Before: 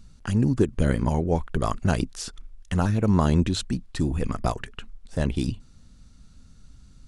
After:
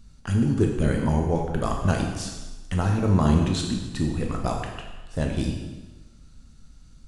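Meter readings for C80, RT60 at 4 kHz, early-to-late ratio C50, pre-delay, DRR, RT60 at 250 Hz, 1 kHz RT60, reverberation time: 6.0 dB, 1.1 s, 4.0 dB, 7 ms, 1.0 dB, 1.2 s, 1.2 s, 1.2 s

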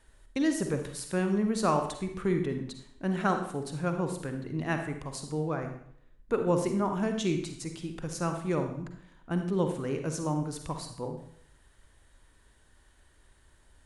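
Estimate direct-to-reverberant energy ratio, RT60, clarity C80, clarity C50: 5.5 dB, 0.65 s, 10.0 dB, 6.5 dB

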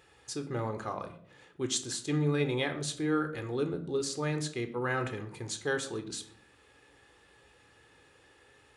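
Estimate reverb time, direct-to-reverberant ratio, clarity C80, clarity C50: 0.60 s, 7.5 dB, 15.5 dB, 12.5 dB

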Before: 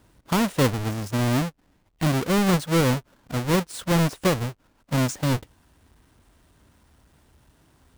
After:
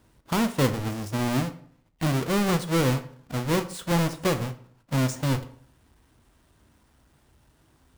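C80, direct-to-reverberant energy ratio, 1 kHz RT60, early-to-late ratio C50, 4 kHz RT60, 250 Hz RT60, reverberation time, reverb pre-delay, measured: 18.0 dB, 9.0 dB, 0.55 s, 14.5 dB, 0.40 s, 0.60 s, 0.55 s, 8 ms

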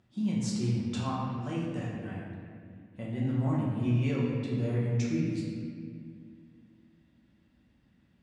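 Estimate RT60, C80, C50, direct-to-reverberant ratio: 2.2 s, 1.5 dB, −0.5 dB, −6.5 dB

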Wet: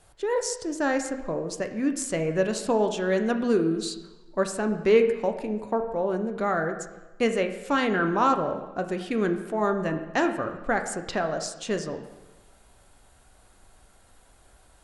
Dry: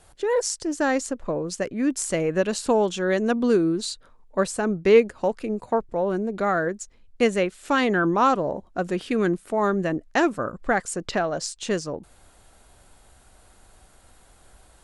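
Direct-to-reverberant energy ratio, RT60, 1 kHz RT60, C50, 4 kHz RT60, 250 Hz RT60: 6.0 dB, 1.1 s, 1.1 s, 9.5 dB, 1.0 s, 1.1 s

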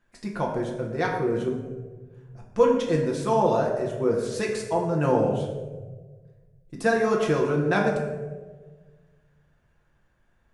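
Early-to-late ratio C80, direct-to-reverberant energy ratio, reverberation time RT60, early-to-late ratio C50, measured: 6.0 dB, −1.5 dB, 1.4 s, 4.0 dB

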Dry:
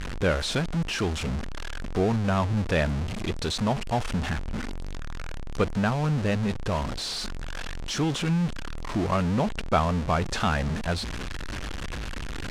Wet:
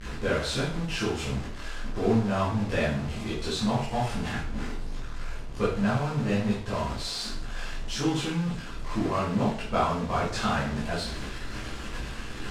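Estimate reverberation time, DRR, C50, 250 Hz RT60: 0.50 s, −9.0 dB, 3.5 dB, 0.55 s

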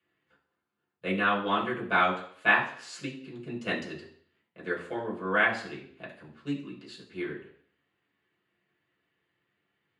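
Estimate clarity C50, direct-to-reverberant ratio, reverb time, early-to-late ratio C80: 8.5 dB, −5.5 dB, 0.60 s, 12.5 dB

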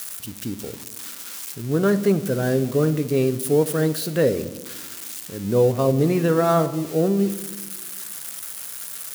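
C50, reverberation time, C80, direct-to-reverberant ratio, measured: 15.0 dB, 1.3 s, 17.0 dB, 10.5 dB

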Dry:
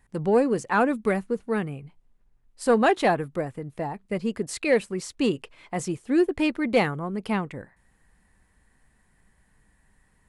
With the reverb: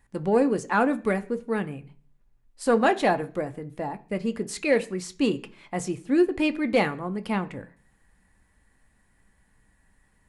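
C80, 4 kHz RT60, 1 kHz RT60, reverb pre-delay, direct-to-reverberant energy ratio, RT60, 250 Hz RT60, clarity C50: 23.0 dB, 0.50 s, 0.35 s, 3 ms, 8.5 dB, 0.40 s, 0.60 s, 19.0 dB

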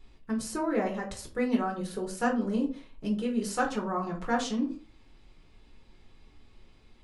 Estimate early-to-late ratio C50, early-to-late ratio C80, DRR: 10.0 dB, 15.0 dB, −1.0 dB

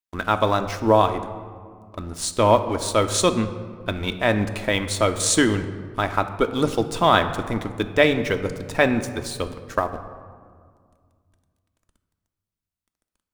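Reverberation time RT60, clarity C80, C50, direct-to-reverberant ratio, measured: 2.0 s, 12.5 dB, 11.0 dB, 7.0 dB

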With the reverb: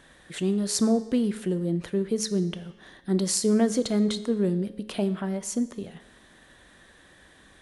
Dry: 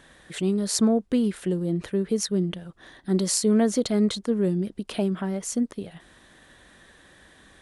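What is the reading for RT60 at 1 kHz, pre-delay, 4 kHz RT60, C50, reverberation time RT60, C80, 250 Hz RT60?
1.1 s, 9 ms, 1.0 s, 14.5 dB, 1.1 s, 16.0 dB, 1.2 s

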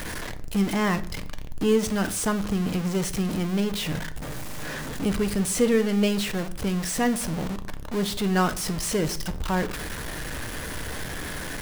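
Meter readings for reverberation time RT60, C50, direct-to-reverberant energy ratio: 0.60 s, 16.0 dB, 9.5 dB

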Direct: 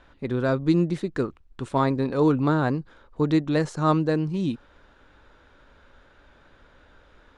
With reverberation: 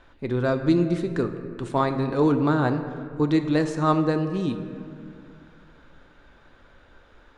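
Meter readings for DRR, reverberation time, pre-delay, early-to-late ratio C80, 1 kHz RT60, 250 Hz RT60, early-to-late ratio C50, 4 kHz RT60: 7.0 dB, 2.3 s, 3 ms, 10.0 dB, 2.1 s, 2.8 s, 9.0 dB, 1.4 s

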